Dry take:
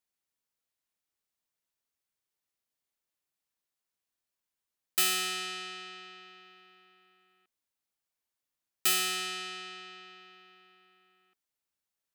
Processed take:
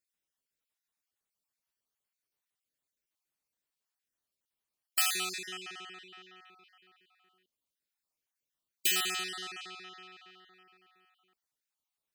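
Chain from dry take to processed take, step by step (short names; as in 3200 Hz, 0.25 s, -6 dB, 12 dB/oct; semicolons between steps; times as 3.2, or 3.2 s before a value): random spectral dropouts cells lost 34%; 5.38–6.59 bell 4500 Hz -8 dB 0.31 oct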